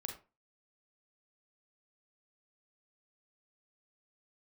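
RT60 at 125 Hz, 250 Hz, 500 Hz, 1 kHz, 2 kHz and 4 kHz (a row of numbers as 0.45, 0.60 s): 0.30, 0.35, 0.30, 0.30, 0.25, 0.20 s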